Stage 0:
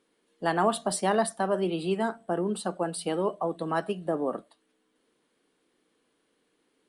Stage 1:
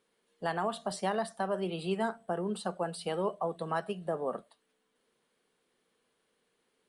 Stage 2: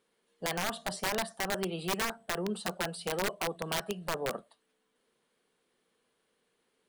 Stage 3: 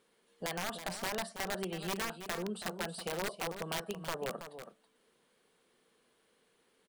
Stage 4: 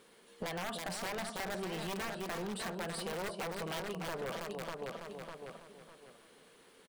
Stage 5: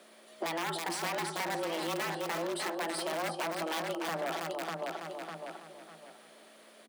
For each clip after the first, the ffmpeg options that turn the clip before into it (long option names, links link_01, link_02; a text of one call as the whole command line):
ffmpeg -i in.wav -filter_complex "[0:a]acrossover=split=6900[link_01][link_02];[link_02]acompressor=threshold=-46dB:ratio=4:attack=1:release=60[link_03];[link_01][link_03]amix=inputs=2:normalize=0,equalizer=frequency=300:width_type=o:width=0.31:gain=-13.5,alimiter=limit=-18.5dB:level=0:latency=1:release=263,volume=-2.5dB" out.wav
ffmpeg -i in.wav -af "aeval=exprs='(mod(16.8*val(0)+1,2)-1)/16.8':channel_layout=same" out.wav
ffmpeg -i in.wav -af "acompressor=threshold=-54dB:ratio=1.5,aecho=1:1:326:0.316,volume=4dB" out.wav
ffmpeg -i in.wav -filter_complex "[0:a]asplit=2[link_01][link_02];[link_02]adelay=601,lowpass=frequency=4100:poles=1,volume=-9dB,asplit=2[link_03][link_04];[link_04]adelay=601,lowpass=frequency=4100:poles=1,volume=0.3,asplit=2[link_05][link_06];[link_06]adelay=601,lowpass=frequency=4100:poles=1,volume=0.3[link_07];[link_01][link_03][link_05][link_07]amix=inputs=4:normalize=0,asoftclip=type=hard:threshold=-38dB,acompressor=threshold=-48dB:ratio=6,volume=10dB" out.wav
ffmpeg -i in.wav -af "aeval=exprs='val(0)+0.000282*(sin(2*PI*60*n/s)+sin(2*PI*2*60*n/s)/2+sin(2*PI*3*60*n/s)/3+sin(2*PI*4*60*n/s)/4+sin(2*PI*5*60*n/s)/5)':channel_layout=same,afreqshift=160,volume=4.5dB" out.wav